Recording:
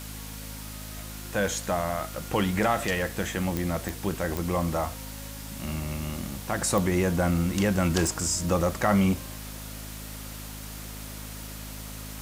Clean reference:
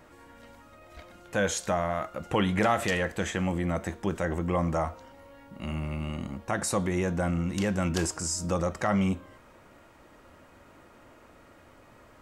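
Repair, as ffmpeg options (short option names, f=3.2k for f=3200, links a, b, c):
-af "adeclick=t=4,bandreject=f=52.7:t=h:w=4,bandreject=f=105.4:t=h:w=4,bandreject=f=158.1:t=h:w=4,bandreject=f=210.8:t=h:w=4,bandreject=f=263.5:t=h:w=4,afwtdn=0.0079,asetnsamples=n=441:p=0,asendcmd='6.61 volume volume -3.5dB',volume=0dB"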